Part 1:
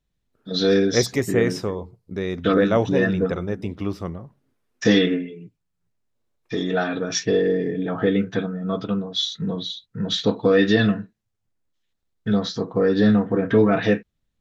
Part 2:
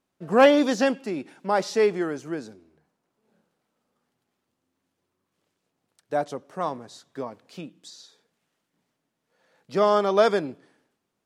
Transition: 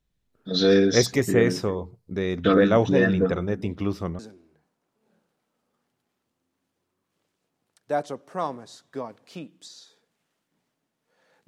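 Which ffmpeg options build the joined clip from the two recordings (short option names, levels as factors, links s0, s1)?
-filter_complex "[0:a]apad=whole_dur=11.47,atrim=end=11.47,atrim=end=4.192[s0];[1:a]atrim=start=2.408:end=9.69[s1];[s0][s1]acrossfade=d=0.004:c1=hsin:c2=hsin"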